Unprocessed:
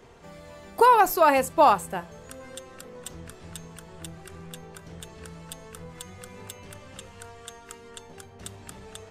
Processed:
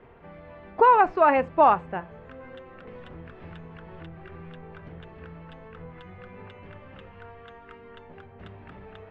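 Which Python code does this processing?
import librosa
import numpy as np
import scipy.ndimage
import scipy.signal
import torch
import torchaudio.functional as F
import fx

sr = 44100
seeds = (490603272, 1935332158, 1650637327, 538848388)

y = scipy.signal.sosfilt(scipy.signal.butter(4, 2500.0, 'lowpass', fs=sr, output='sos'), x)
y = fx.band_squash(y, sr, depth_pct=100, at=(2.87, 4.89))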